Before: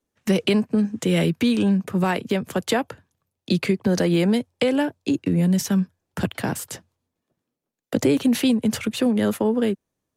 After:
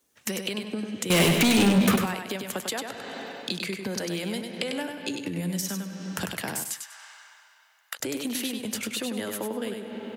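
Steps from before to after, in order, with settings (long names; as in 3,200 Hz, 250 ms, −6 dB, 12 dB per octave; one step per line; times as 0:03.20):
spectral tilt +2.5 dB per octave
on a send at −15.5 dB: convolution reverb RT60 2.8 s, pre-delay 110 ms
on the sum: downward compressor 6 to 1, threshold −38 dBFS, peak gain reduction 19.5 dB
0:01.10–0:01.96: leveller curve on the samples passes 5
0:06.61–0:08.00: Chebyshev high-pass filter 1,100 Hz, order 3
repeating echo 98 ms, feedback 23%, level −5.5 dB
level +7.5 dB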